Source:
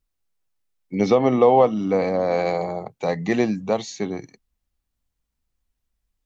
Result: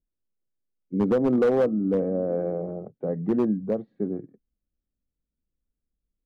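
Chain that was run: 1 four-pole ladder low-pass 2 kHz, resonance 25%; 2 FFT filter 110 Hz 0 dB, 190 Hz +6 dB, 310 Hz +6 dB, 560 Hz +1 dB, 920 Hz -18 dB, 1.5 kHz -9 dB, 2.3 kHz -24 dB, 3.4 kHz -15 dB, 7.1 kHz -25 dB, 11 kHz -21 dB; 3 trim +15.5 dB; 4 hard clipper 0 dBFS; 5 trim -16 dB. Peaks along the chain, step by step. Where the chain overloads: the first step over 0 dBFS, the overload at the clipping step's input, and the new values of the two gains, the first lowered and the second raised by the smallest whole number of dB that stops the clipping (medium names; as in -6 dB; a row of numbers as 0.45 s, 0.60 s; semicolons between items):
-9.0 dBFS, -8.5 dBFS, +7.0 dBFS, 0.0 dBFS, -16.0 dBFS; step 3, 7.0 dB; step 3 +8.5 dB, step 5 -9 dB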